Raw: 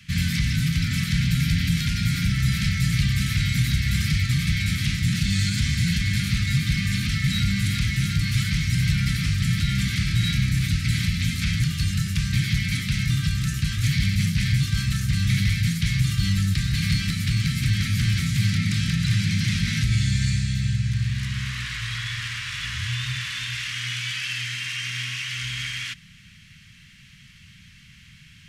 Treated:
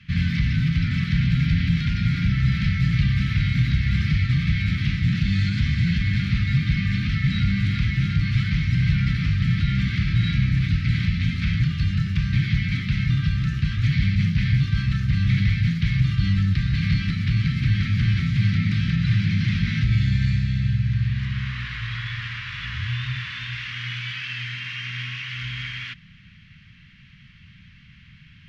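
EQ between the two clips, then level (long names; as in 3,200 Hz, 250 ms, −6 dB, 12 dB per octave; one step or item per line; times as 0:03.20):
high-frequency loss of the air 280 metres
+2.0 dB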